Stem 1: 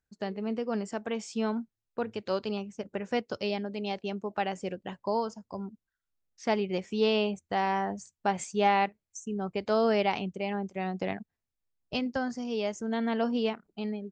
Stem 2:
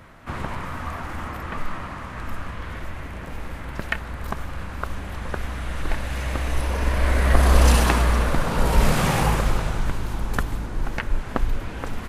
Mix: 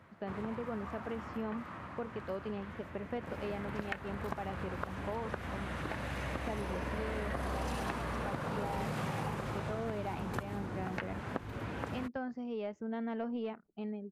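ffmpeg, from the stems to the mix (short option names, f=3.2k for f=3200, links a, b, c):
-filter_complex "[0:a]lowpass=2.7k,asoftclip=type=tanh:threshold=-19.5dB,volume=-5dB[a];[1:a]highpass=f=83:w=0.5412,highpass=f=83:w=1.3066,volume=-3.5dB,afade=t=in:st=3.08:d=0.38:silence=0.421697[b];[a][b]amix=inputs=2:normalize=0,highshelf=f=3.8k:g=-9.5,acompressor=threshold=-34dB:ratio=6"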